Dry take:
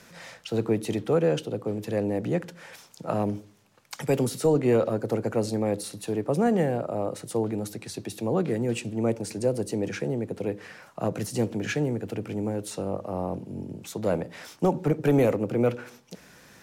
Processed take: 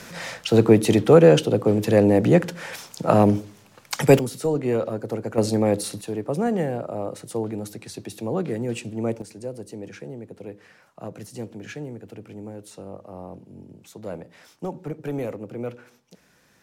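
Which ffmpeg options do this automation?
-af "asetnsamples=n=441:p=0,asendcmd='4.19 volume volume -1.5dB;5.38 volume volume 6dB;6.01 volume volume -0.5dB;9.22 volume volume -8dB',volume=3.35"

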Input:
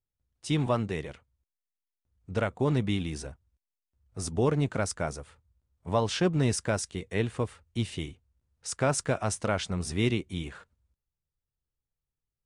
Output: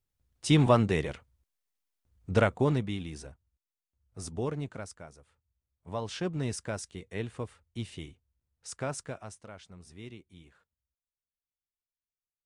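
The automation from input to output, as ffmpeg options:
-af "volume=5.96,afade=t=out:st=2.39:d=0.48:silence=0.281838,afade=t=out:st=4.3:d=0.79:silence=0.266073,afade=t=in:st=5.09:d=1.22:silence=0.298538,afade=t=out:st=8.75:d=0.66:silence=0.251189"

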